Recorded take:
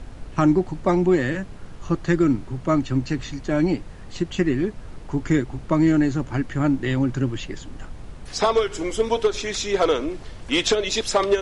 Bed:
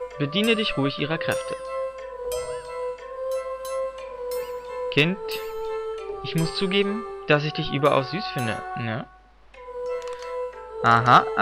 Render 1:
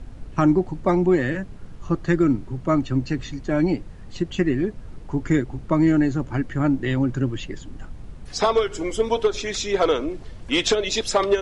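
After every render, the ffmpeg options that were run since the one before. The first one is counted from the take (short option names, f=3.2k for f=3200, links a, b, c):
-af "afftdn=nr=6:nf=-39"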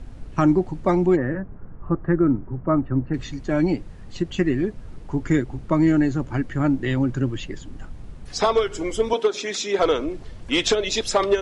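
-filter_complex "[0:a]asplit=3[a][b][c];[a]afade=t=out:st=1.15:d=0.02[d];[b]lowpass=f=1.6k:w=0.5412,lowpass=f=1.6k:w=1.3066,afade=t=in:st=1.15:d=0.02,afade=t=out:st=3.13:d=0.02[e];[c]afade=t=in:st=3.13:d=0.02[f];[d][e][f]amix=inputs=3:normalize=0,asettb=1/sr,asplit=3[g][h][i];[g]atrim=end=9.134[j];[h]atrim=start=9.13:end=9.79,asetpts=PTS-STARTPTS,afade=t=in:d=0.004:c=qsin,afade=t=out:st=0.656:d=0.004:c=qsin,highpass=f=190:w=0.5412,highpass=f=190:w=1.3066[k];[i]atrim=start=9.786[l];[j][k]acrossfade=d=0.004:c1=hsin:c2=qsin[m];[m][l]acrossfade=d=0.004:c1=qsin:c2=hsin"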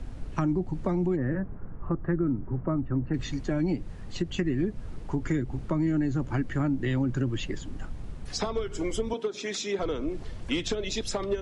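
-filter_complex "[0:a]acrossover=split=260[a][b];[a]alimiter=limit=-23dB:level=0:latency=1[c];[b]acompressor=threshold=-30dB:ratio=12[d];[c][d]amix=inputs=2:normalize=0"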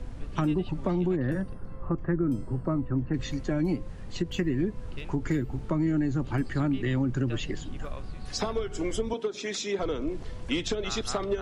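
-filter_complex "[1:a]volume=-24dB[a];[0:a][a]amix=inputs=2:normalize=0"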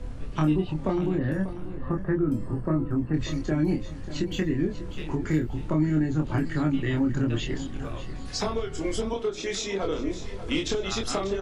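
-filter_complex "[0:a]asplit=2[a][b];[b]adelay=26,volume=-3dB[c];[a][c]amix=inputs=2:normalize=0,aecho=1:1:591|1182|1773:0.224|0.0739|0.0244"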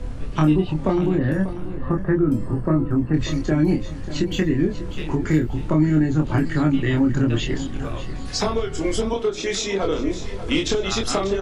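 -af "volume=6dB"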